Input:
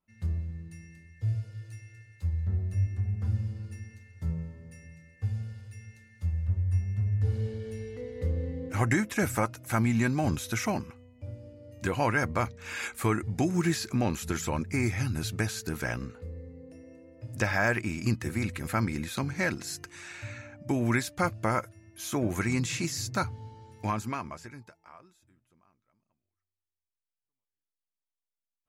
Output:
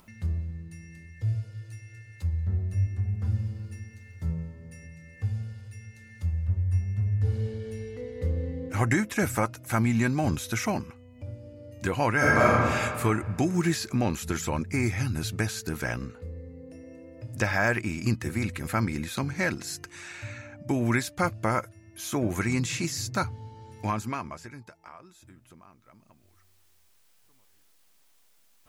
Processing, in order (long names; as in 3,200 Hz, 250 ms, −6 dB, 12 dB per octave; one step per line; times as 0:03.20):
upward compression, threshold −41 dBFS
0:03.14–0:04.28: surface crackle 340 per second −63 dBFS
0:12.16–0:12.71: thrown reverb, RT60 1.9 s, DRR −7.5 dB
level +1.5 dB